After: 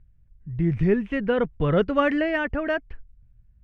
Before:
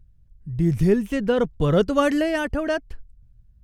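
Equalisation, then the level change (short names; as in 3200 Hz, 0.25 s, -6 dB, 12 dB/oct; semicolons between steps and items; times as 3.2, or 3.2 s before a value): synth low-pass 2200 Hz, resonance Q 1.8; -2.5 dB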